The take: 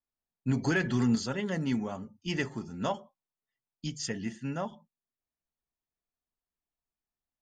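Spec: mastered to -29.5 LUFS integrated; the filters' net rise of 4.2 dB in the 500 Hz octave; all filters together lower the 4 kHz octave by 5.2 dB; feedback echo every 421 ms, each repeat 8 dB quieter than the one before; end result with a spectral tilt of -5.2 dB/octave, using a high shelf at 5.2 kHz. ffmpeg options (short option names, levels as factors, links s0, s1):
-af "equalizer=f=500:t=o:g=5.5,equalizer=f=4000:t=o:g=-6,highshelf=f=5200:g=-3,aecho=1:1:421|842|1263|1684|2105:0.398|0.159|0.0637|0.0255|0.0102,volume=1.26"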